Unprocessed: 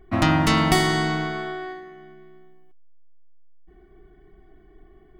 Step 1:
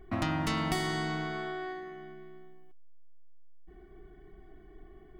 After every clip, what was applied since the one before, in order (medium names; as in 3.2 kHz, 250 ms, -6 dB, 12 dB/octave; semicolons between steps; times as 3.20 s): compression 2:1, threshold -36 dBFS, peak gain reduction 12 dB; trim -1 dB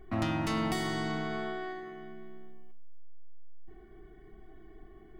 in parallel at -2 dB: peak limiter -27.5 dBFS, peak gain reduction 10.5 dB; on the sum: feedback comb 110 Hz, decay 0.56 s, harmonics all, mix 70%; trim +3.5 dB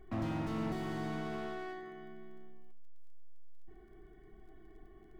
crackle 16 per s -57 dBFS; slew-rate limiter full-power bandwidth 15 Hz; trim -4 dB